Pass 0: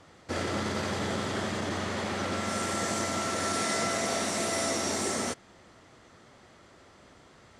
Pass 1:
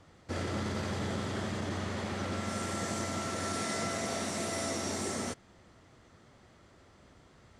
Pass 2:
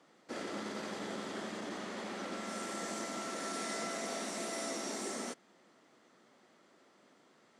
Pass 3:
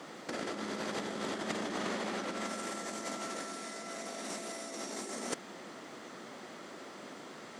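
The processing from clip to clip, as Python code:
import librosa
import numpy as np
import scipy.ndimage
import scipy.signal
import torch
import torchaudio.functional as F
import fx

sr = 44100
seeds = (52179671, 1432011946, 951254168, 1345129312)

y1 = fx.low_shelf(x, sr, hz=180.0, db=9.0)
y1 = F.gain(torch.from_numpy(y1), -6.0).numpy()
y2 = scipy.signal.sosfilt(scipy.signal.butter(4, 210.0, 'highpass', fs=sr, output='sos'), y1)
y2 = F.gain(torch.from_numpy(y2), -4.0).numpy()
y3 = fx.over_compress(y2, sr, threshold_db=-46.0, ratio=-0.5)
y3 = F.gain(torch.from_numpy(y3), 9.5).numpy()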